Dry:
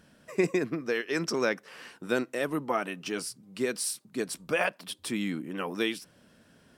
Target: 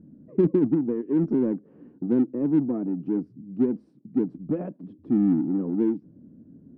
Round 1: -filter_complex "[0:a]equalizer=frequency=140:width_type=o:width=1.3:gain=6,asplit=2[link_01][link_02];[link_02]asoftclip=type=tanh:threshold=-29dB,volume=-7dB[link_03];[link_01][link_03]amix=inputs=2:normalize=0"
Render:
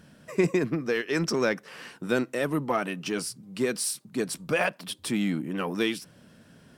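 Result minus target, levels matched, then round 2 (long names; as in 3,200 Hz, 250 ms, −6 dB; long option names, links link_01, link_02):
250 Hz band −4.0 dB
-filter_complex "[0:a]lowpass=frequency=290:width_type=q:width=3.6,equalizer=frequency=140:width_type=o:width=1.3:gain=6,asplit=2[link_01][link_02];[link_02]asoftclip=type=tanh:threshold=-29dB,volume=-7dB[link_03];[link_01][link_03]amix=inputs=2:normalize=0"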